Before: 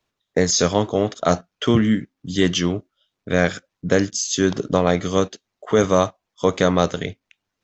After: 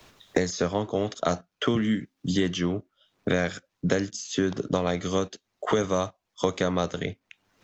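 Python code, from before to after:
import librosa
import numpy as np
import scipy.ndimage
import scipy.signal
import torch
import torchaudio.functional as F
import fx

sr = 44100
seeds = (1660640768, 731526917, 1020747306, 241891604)

y = fx.band_squash(x, sr, depth_pct=100)
y = y * 10.0 ** (-8.0 / 20.0)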